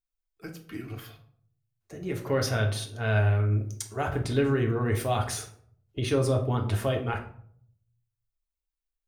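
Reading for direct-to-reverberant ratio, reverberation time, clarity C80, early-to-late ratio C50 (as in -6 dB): 1.5 dB, 0.55 s, 13.5 dB, 9.5 dB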